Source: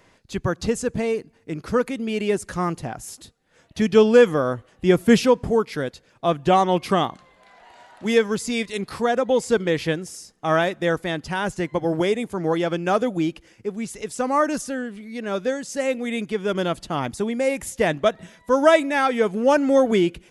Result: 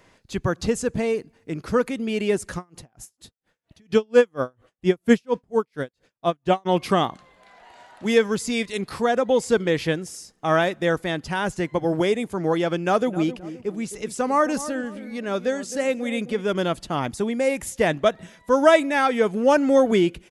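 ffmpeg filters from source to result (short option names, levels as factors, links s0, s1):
-filter_complex "[0:a]asplit=3[s0][s1][s2];[s0]afade=t=out:st=2.57:d=0.02[s3];[s1]aeval=exprs='val(0)*pow(10,-40*(0.5-0.5*cos(2*PI*4.3*n/s))/20)':c=same,afade=t=in:st=2.57:d=0.02,afade=t=out:st=6.65:d=0.02[s4];[s2]afade=t=in:st=6.65:d=0.02[s5];[s3][s4][s5]amix=inputs=3:normalize=0,asplit=3[s6][s7][s8];[s6]afade=t=out:st=13.06:d=0.02[s9];[s7]asplit=2[s10][s11];[s11]adelay=262,lowpass=f=1100:p=1,volume=0.237,asplit=2[s12][s13];[s13]adelay=262,lowpass=f=1100:p=1,volume=0.38,asplit=2[s14][s15];[s15]adelay=262,lowpass=f=1100:p=1,volume=0.38,asplit=2[s16][s17];[s17]adelay=262,lowpass=f=1100:p=1,volume=0.38[s18];[s10][s12][s14][s16][s18]amix=inputs=5:normalize=0,afade=t=in:st=13.06:d=0.02,afade=t=out:st=16.4:d=0.02[s19];[s8]afade=t=in:st=16.4:d=0.02[s20];[s9][s19][s20]amix=inputs=3:normalize=0"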